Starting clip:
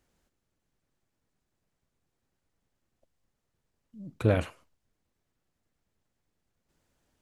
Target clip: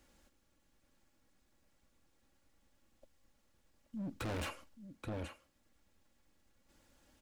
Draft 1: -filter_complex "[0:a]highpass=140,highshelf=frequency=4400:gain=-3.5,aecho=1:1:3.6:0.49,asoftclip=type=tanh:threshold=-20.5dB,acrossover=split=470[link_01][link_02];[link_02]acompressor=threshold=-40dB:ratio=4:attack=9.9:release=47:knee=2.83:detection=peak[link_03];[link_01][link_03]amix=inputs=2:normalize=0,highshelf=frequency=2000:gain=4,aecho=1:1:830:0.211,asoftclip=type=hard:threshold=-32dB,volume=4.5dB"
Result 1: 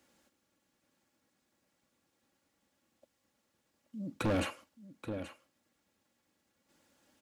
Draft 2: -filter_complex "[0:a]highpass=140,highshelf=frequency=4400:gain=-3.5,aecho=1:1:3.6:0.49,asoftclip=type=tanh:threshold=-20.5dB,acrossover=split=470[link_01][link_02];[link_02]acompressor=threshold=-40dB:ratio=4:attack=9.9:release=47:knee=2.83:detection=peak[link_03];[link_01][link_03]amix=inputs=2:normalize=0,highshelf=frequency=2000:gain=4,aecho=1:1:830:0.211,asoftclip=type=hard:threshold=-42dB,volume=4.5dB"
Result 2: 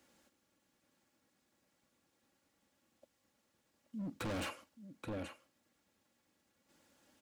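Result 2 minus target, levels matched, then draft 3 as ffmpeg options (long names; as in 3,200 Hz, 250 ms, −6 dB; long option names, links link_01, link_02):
125 Hz band −3.0 dB
-filter_complex "[0:a]highshelf=frequency=4400:gain=-3.5,aecho=1:1:3.6:0.49,asoftclip=type=tanh:threshold=-20.5dB,acrossover=split=470[link_01][link_02];[link_02]acompressor=threshold=-40dB:ratio=4:attack=9.9:release=47:knee=2.83:detection=peak[link_03];[link_01][link_03]amix=inputs=2:normalize=0,highshelf=frequency=2000:gain=4,aecho=1:1:830:0.211,asoftclip=type=hard:threshold=-42dB,volume=4.5dB"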